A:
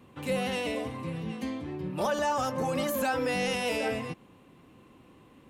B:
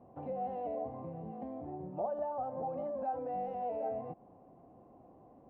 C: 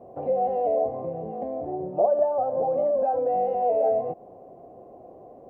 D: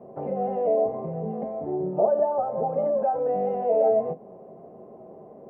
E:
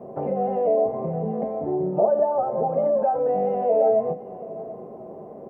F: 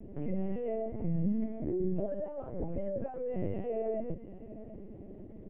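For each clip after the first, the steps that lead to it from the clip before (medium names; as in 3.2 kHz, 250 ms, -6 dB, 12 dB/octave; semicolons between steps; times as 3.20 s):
compression 4:1, threshold -37 dBFS, peak gain reduction 10.5 dB; resonant low-pass 710 Hz, resonance Q 7; trim -6 dB
high-order bell 510 Hz +10 dB 1.2 oct; trim +5.5 dB
reverberation RT60 0.15 s, pre-delay 3 ms, DRR 7.5 dB; trim -5 dB
in parallel at 0 dB: compression, threshold -32 dBFS, peak gain reduction 15 dB; on the sum: delay 736 ms -17 dB
FFT filter 230 Hz 0 dB, 980 Hz -27 dB, 1.9 kHz -1 dB; LPC vocoder at 8 kHz pitch kept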